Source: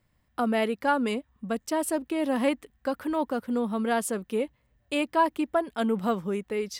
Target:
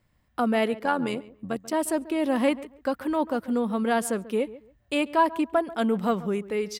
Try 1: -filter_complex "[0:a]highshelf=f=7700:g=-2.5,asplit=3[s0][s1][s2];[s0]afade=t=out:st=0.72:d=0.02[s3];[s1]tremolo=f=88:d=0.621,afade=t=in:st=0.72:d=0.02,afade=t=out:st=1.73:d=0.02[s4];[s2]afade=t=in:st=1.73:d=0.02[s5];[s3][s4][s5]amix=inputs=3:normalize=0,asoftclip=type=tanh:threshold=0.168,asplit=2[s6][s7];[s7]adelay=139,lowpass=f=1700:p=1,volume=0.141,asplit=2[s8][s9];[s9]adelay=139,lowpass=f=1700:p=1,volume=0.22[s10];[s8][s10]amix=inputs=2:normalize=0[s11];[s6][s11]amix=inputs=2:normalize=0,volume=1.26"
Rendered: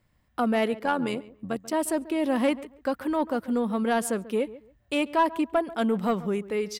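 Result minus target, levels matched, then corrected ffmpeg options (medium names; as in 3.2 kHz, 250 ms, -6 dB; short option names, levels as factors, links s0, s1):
saturation: distortion +16 dB
-filter_complex "[0:a]highshelf=f=7700:g=-2.5,asplit=3[s0][s1][s2];[s0]afade=t=out:st=0.72:d=0.02[s3];[s1]tremolo=f=88:d=0.621,afade=t=in:st=0.72:d=0.02,afade=t=out:st=1.73:d=0.02[s4];[s2]afade=t=in:st=1.73:d=0.02[s5];[s3][s4][s5]amix=inputs=3:normalize=0,asoftclip=type=tanh:threshold=0.473,asplit=2[s6][s7];[s7]adelay=139,lowpass=f=1700:p=1,volume=0.141,asplit=2[s8][s9];[s9]adelay=139,lowpass=f=1700:p=1,volume=0.22[s10];[s8][s10]amix=inputs=2:normalize=0[s11];[s6][s11]amix=inputs=2:normalize=0,volume=1.26"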